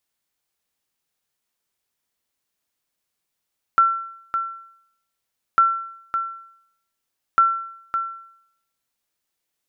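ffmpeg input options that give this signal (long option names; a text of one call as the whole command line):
ffmpeg -f lavfi -i "aevalsrc='0.376*(sin(2*PI*1350*mod(t,1.8))*exp(-6.91*mod(t,1.8)/0.7)+0.376*sin(2*PI*1350*max(mod(t,1.8)-0.56,0))*exp(-6.91*max(mod(t,1.8)-0.56,0)/0.7))':duration=5.4:sample_rate=44100" out.wav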